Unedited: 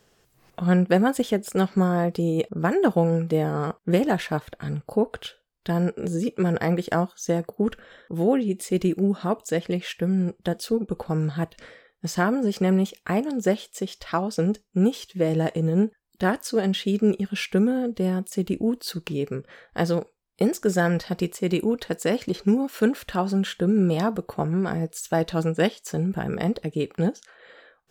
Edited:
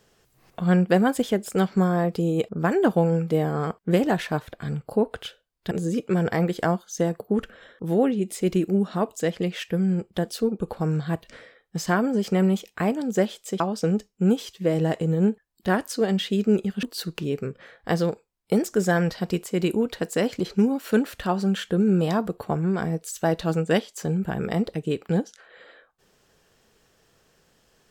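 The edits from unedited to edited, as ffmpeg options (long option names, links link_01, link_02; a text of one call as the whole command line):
ffmpeg -i in.wav -filter_complex "[0:a]asplit=4[link_01][link_02][link_03][link_04];[link_01]atrim=end=5.712[link_05];[link_02]atrim=start=5.998:end=13.892[link_06];[link_03]atrim=start=14.148:end=17.382[link_07];[link_04]atrim=start=18.718[link_08];[link_05][link_06]acrossfade=duration=0.004:curve1=hsin:curve2=hsin[link_09];[link_09][link_07]acrossfade=duration=0.004:curve1=hsin:curve2=hsin[link_10];[link_10][link_08]acrossfade=duration=0.004:curve1=hsin:curve2=hsin" out.wav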